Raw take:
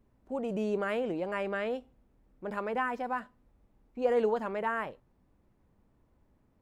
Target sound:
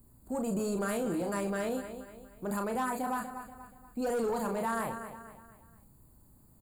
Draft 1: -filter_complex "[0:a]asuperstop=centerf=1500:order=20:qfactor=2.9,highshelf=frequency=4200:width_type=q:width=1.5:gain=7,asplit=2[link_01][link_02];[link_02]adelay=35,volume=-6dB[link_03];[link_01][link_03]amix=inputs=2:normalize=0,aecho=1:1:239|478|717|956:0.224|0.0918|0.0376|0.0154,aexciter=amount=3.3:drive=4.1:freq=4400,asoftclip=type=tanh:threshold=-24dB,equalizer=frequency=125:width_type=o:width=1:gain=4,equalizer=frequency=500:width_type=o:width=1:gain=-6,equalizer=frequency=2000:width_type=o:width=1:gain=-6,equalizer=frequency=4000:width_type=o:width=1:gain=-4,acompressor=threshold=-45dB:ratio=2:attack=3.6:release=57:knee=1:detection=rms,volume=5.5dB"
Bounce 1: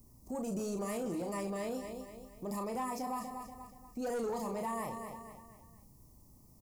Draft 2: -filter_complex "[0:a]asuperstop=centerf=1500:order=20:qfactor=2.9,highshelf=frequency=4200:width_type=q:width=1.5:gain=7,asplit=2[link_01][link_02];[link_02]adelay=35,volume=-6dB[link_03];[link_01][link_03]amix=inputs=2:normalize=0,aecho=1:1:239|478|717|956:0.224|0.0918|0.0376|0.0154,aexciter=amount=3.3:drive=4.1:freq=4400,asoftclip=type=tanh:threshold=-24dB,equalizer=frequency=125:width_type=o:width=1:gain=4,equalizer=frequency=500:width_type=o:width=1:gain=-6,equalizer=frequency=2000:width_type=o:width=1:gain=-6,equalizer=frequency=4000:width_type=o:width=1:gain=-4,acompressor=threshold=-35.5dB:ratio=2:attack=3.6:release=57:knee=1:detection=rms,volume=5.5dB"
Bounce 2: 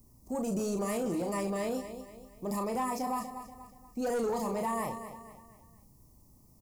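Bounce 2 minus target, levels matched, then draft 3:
2,000 Hz band −5.0 dB
-filter_complex "[0:a]asuperstop=centerf=5700:order=20:qfactor=2.9,highshelf=frequency=4200:width_type=q:width=1.5:gain=7,asplit=2[link_01][link_02];[link_02]adelay=35,volume=-6dB[link_03];[link_01][link_03]amix=inputs=2:normalize=0,aecho=1:1:239|478|717|956:0.224|0.0918|0.0376|0.0154,aexciter=amount=3.3:drive=4.1:freq=4400,asoftclip=type=tanh:threshold=-24dB,equalizer=frequency=125:width_type=o:width=1:gain=4,equalizer=frequency=500:width_type=o:width=1:gain=-6,equalizer=frequency=2000:width_type=o:width=1:gain=-6,equalizer=frequency=4000:width_type=o:width=1:gain=-4,acompressor=threshold=-35.5dB:ratio=2:attack=3.6:release=57:knee=1:detection=rms,volume=5.5dB"

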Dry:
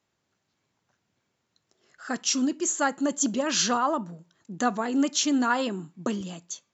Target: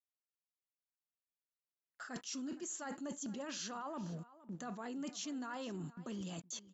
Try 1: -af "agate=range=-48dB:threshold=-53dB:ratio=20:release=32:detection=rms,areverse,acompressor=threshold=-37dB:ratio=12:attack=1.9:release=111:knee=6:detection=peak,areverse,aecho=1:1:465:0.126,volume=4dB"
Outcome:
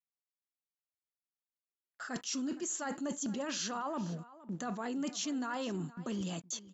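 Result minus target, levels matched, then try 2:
downward compressor: peak gain reduction −6.5 dB
-af "agate=range=-48dB:threshold=-53dB:ratio=20:release=32:detection=rms,areverse,acompressor=threshold=-44dB:ratio=12:attack=1.9:release=111:knee=6:detection=peak,areverse,aecho=1:1:465:0.126,volume=4dB"

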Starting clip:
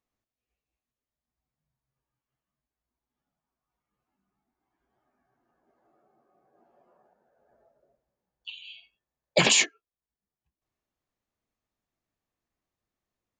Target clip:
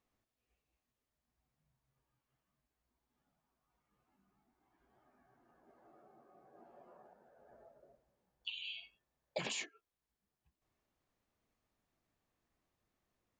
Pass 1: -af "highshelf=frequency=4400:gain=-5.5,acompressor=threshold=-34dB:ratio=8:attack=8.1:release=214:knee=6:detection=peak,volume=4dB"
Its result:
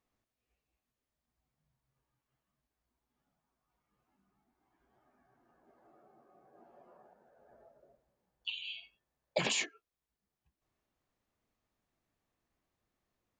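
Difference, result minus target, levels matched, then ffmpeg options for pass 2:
downward compressor: peak gain reduction −8 dB
-af "highshelf=frequency=4400:gain=-5.5,acompressor=threshold=-43dB:ratio=8:attack=8.1:release=214:knee=6:detection=peak,volume=4dB"

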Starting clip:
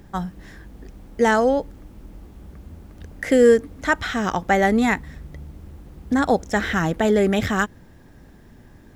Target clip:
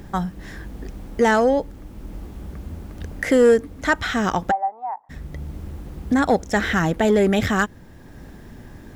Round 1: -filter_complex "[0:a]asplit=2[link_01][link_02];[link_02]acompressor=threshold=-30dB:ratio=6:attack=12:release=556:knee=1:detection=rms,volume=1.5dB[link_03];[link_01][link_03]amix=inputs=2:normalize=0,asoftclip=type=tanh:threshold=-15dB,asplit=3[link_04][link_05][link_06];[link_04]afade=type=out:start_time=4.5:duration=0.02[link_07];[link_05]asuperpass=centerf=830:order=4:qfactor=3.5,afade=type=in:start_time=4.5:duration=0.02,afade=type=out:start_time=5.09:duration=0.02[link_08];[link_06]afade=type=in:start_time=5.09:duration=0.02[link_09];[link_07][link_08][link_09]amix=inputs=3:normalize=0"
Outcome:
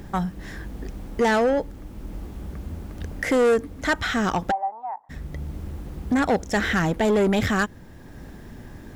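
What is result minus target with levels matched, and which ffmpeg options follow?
soft clipping: distortion +10 dB
-filter_complex "[0:a]asplit=2[link_01][link_02];[link_02]acompressor=threshold=-30dB:ratio=6:attack=12:release=556:knee=1:detection=rms,volume=1.5dB[link_03];[link_01][link_03]amix=inputs=2:normalize=0,asoftclip=type=tanh:threshold=-6.5dB,asplit=3[link_04][link_05][link_06];[link_04]afade=type=out:start_time=4.5:duration=0.02[link_07];[link_05]asuperpass=centerf=830:order=4:qfactor=3.5,afade=type=in:start_time=4.5:duration=0.02,afade=type=out:start_time=5.09:duration=0.02[link_08];[link_06]afade=type=in:start_time=5.09:duration=0.02[link_09];[link_07][link_08][link_09]amix=inputs=3:normalize=0"

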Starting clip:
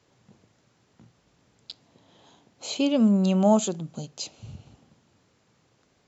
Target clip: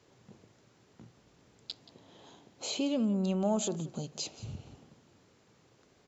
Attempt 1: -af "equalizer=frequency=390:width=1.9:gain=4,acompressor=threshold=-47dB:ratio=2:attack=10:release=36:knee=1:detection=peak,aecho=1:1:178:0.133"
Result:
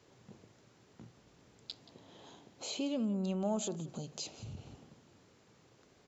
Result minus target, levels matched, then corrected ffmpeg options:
downward compressor: peak gain reduction +4.5 dB
-af "equalizer=frequency=390:width=1.9:gain=4,acompressor=threshold=-38dB:ratio=2:attack=10:release=36:knee=1:detection=peak,aecho=1:1:178:0.133"

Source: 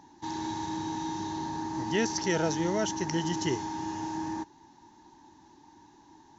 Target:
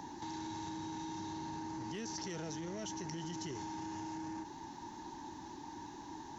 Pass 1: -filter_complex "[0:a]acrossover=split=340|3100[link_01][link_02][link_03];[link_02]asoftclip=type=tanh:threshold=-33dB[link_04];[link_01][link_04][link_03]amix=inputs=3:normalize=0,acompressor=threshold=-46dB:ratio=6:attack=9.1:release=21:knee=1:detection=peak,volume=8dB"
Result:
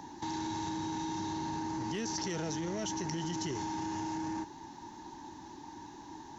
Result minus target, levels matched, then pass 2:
downward compressor: peak gain reduction −6 dB
-filter_complex "[0:a]acrossover=split=340|3100[link_01][link_02][link_03];[link_02]asoftclip=type=tanh:threshold=-33dB[link_04];[link_01][link_04][link_03]amix=inputs=3:normalize=0,acompressor=threshold=-53.5dB:ratio=6:attack=9.1:release=21:knee=1:detection=peak,volume=8dB"

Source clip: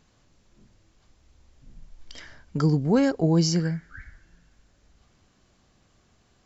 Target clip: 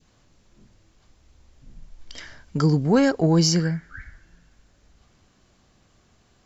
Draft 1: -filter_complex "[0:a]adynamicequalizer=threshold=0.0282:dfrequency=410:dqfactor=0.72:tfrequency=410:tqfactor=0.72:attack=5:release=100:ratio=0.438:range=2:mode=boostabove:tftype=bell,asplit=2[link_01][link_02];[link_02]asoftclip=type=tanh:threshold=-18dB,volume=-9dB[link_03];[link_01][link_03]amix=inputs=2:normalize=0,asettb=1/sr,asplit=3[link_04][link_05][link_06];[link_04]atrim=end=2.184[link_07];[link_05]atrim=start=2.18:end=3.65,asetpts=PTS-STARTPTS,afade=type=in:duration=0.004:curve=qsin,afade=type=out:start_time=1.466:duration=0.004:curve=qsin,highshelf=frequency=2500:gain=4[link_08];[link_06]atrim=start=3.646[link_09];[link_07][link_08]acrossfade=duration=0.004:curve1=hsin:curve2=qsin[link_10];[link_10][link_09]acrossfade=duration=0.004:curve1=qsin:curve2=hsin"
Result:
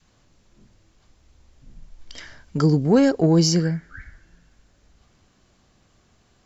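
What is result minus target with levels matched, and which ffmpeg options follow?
1,000 Hz band −2.5 dB
-filter_complex "[0:a]adynamicequalizer=threshold=0.0282:dfrequency=1200:dqfactor=0.72:tfrequency=1200:tqfactor=0.72:attack=5:release=100:ratio=0.438:range=2:mode=boostabove:tftype=bell,asplit=2[link_01][link_02];[link_02]asoftclip=type=tanh:threshold=-18dB,volume=-9dB[link_03];[link_01][link_03]amix=inputs=2:normalize=0,asettb=1/sr,asplit=3[link_04][link_05][link_06];[link_04]atrim=end=2.184[link_07];[link_05]atrim=start=2.18:end=3.65,asetpts=PTS-STARTPTS,afade=type=in:duration=0.004:curve=qsin,afade=type=out:start_time=1.466:duration=0.004:curve=qsin,highshelf=frequency=2500:gain=4[link_08];[link_06]atrim=start=3.646[link_09];[link_07][link_08]acrossfade=duration=0.004:curve1=hsin:curve2=qsin[link_10];[link_10][link_09]acrossfade=duration=0.004:curve1=qsin:curve2=hsin"

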